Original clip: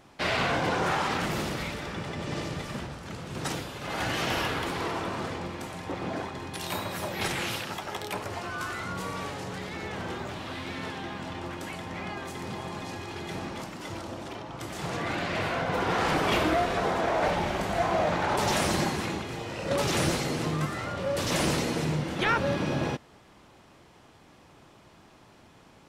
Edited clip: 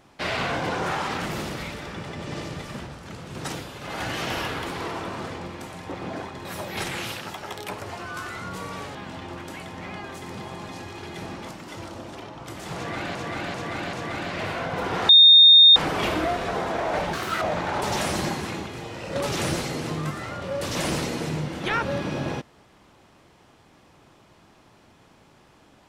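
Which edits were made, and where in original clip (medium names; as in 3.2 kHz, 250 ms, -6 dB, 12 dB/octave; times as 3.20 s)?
6.45–6.89 s: delete
9.39–11.08 s: delete
14.89–15.28 s: loop, 4 plays
16.05 s: add tone 3.67 kHz -8 dBFS 0.67 s
17.42–17.97 s: speed 192%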